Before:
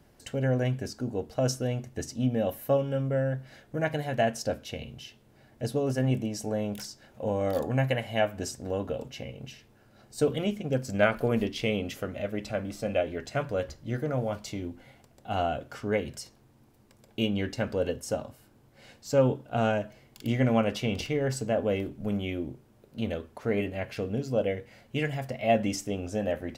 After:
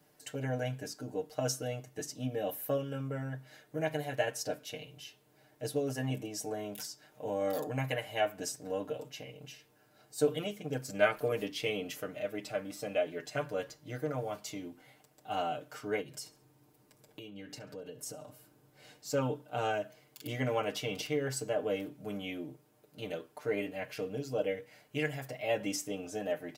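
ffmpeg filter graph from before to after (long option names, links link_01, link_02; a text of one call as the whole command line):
ffmpeg -i in.wav -filter_complex "[0:a]asettb=1/sr,asplit=3[link_01][link_02][link_03];[link_01]atrim=end=16.014[link_04];[link_02]atrim=start=16.01:end=19.1,asetpts=PTS-STARTPTS,afade=type=in:duration=0.004:curve=qsin,afade=type=out:start_time=3.086:duration=0.004:curve=qsin,lowshelf=frequency=380:gain=5.5,acompressor=threshold=-36dB:ratio=6:attack=3.2:release=140:knee=1:detection=peak,aecho=1:1:69|138|207:0.1|0.039|0.0152,atrim=end_sample=136269[link_05];[link_03]atrim=start=19.096[link_06];[link_04][link_05]acrossfade=duration=0.004:curve1=hsin:curve2=qsin[link_07];[link_07][link_06]acrossfade=duration=0.004:curve1=qsin:curve2=hsin,highpass=frequency=280:poles=1,highshelf=frequency=9000:gain=9,aecho=1:1:6.6:0.93,volume=-6.5dB" out.wav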